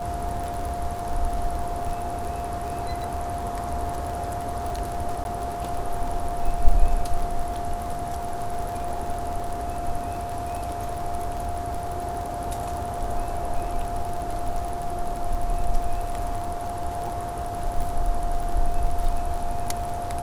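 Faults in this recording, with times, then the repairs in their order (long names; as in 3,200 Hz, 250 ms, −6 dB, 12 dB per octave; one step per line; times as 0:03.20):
surface crackle 41 per second −29 dBFS
whistle 700 Hz −30 dBFS
0:05.24–0:05.25: drop-out 11 ms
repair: click removal
notch filter 700 Hz, Q 30
repair the gap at 0:05.24, 11 ms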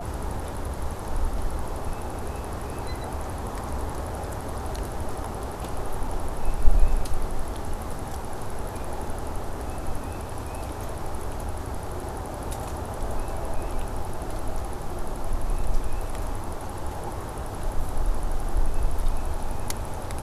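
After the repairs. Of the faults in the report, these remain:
none of them is left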